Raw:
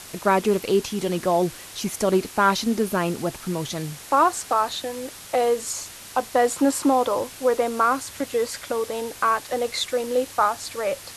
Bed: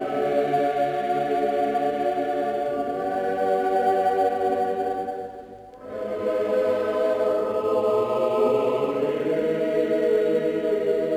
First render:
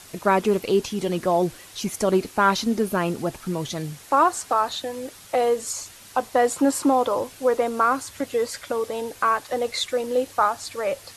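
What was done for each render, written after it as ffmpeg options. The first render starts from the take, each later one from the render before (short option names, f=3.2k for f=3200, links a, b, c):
-af "afftdn=nr=6:nf=-41"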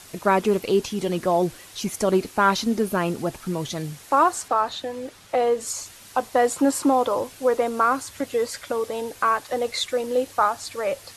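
-filter_complex "[0:a]asettb=1/sr,asplit=3[a][b][c];[a]atrim=end=4.484[d];[b]atrim=start=4.48:end=5.61,asetpts=PTS-STARTPTS,afade=t=in:d=0.004:c=qsin,afade=t=out:st=1.126:d=0.004:c=qsin,highshelf=f=6.5k:g=-10.5[e];[c]atrim=start=5.606[f];[d][e]acrossfade=d=0.004:c1=hsin:c2=qsin[g];[g][f]acrossfade=d=0.004:c1=qsin:c2=hsin"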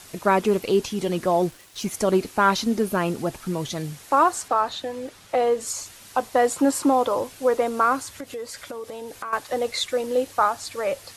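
-filter_complex "[0:a]asettb=1/sr,asplit=3[a][b][c];[a]atrim=end=1.384[d];[b]atrim=start=1.38:end=1.91,asetpts=PTS-STARTPTS,afade=t=in:d=0.004:c=qsin,afade=t=out:st=0.526:d=0.004:c=qsin,aeval=exprs='sgn(val(0))*max(abs(val(0))-0.00398,0)':c=same[e];[c]atrim=start=1.906[f];[d][e]acrossfade=d=0.004:c1=hsin:c2=qsin[g];[g][f]acrossfade=d=0.004:c1=qsin:c2=hsin,asettb=1/sr,asplit=3[h][i][j];[h]atrim=end=8.174[k];[i]atrim=start=8.17:end=9.33,asetpts=PTS-STARTPTS,afade=t=in:d=0.004:c=qsin,afade=t=out:st=1.156:d=0.004:c=qsin,acompressor=threshold=-33dB:ratio=3:attack=3.2:release=140:knee=1:detection=peak[l];[j]atrim=start=9.326[m];[k][l]acrossfade=d=0.004:c1=hsin:c2=qsin[n];[n][m]acrossfade=d=0.004:c1=qsin:c2=hsin"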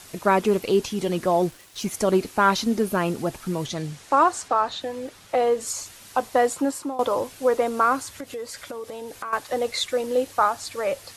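-filter_complex "[0:a]asettb=1/sr,asplit=3[a][b][c];[a]atrim=end=3.664[d];[b]atrim=start=3.66:end=4.81,asetpts=PTS-STARTPTS,afade=t=in:d=0.004:c=qsin,afade=t=out:st=1.146:d=0.004:c=qsin,lowpass=8.6k[e];[c]atrim=start=4.806[f];[d][e]acrossfade=d=0.004:c1=hsin:c2=qsin[g];[g][f]acrossfade=d=0.004:c1=qsin:c2=hsin,asplit=2[h][i];[h]atrim=end=6.99,asetpts=PTS-STARTPTS,afade=t=out:st=6.38:d=0.61:silence=0.149624[j];[i]atrim=start=6.99,asetpts=PTS-STARTPTS,afade=t=in:d=0.004:c=hsin:silence=0.149624[k];[j][k]concat=n=2:v=0:a=1"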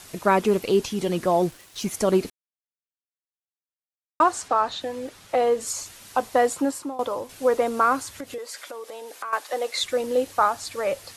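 -filter_complex "[0:a]asettb=1/sr,asplit=3[a][b][c];[a]atrim=end=8.384[d];[b]atrim=start=8.38:end=9.8,asetpts=PTS-STARTPTS,afade=t=in:d=0.004:c=qsin,afade=t=out:st=1.416:d=0.004:c=qsin,highpass=450[e];[c]atrim=start=9.796[f];[d][e]acrossfade=d=0.004:c1=hsin:c2=qsin[g];[g][f]acrossfade=d=0.004:c1=qsin:c2=hsin,asplit=4[h][i][j][k];[h]atrim=end=2.3,asetpts=PTS-STARTPTS,afade=t=out:st=2.296:d=0.004:c=hsin[l];[i]atrim=start=2.3:end=4.2,asetpts=PTS-STARTPTS,volume=0[m];[j]atrim=start=4.2:end=7.29,asetpts=PTS-STARTPTS,afade=t=in:d=0.004:c=hsin,afade=t=out:st=2.45:d=0.64:silence=0.421697[n];[k]atrim=start=7.29,asetpts=PTS-STARTPTS,afade=t=in:d=0.004:c=hsin:silence=0.421697[o];[l][m][n][o]concat=n=4:v=0:a=1"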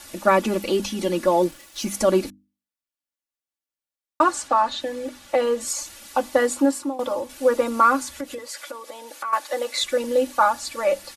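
-af "bandreject=f=50:t=h:w=6,bandreject=f=100:t=h:w=6,bandreject=f=150:t=h:w=6,bandreject=f=200:t=h:w=6,bandreject=f=250:t=h:w=6,bandreject=f=300:t=h:w=6,aecho=1:1:3.5:0.89"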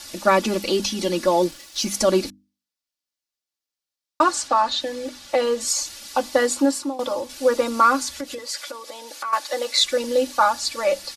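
-af "equalizer=f=4.8k:t=o:w=1.1:g=9"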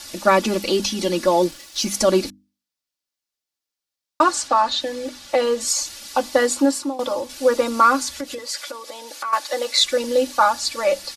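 -af "volume=1.5dB"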